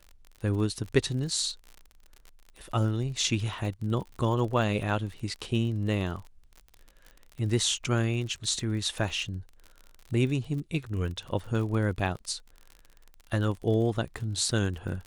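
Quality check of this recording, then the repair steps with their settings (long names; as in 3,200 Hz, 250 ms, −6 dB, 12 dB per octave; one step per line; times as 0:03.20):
surface crackle 48 per second −37 dBFS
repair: click removal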